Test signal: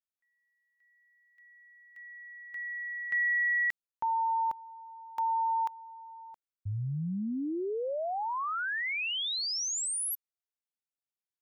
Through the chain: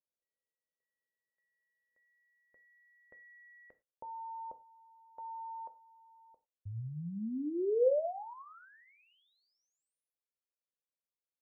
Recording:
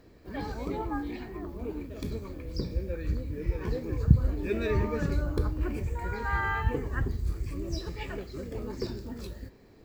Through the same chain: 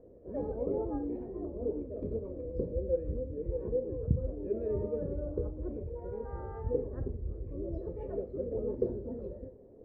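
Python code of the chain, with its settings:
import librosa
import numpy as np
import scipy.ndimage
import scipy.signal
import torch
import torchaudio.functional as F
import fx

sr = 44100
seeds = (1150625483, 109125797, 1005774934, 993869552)

y = fx.rider(x, sr, range_db=4, speed_s=2.0)
y = fx.lowpass_res(y, sr, hz=520.0, q=4.9)
y = fx.rev_gated(y, sr, seeds[0], gate_ms=130, shape='falling', drr_db=9.5)
y = F.gain(torch.from_numpy(y), -8.5).numpy()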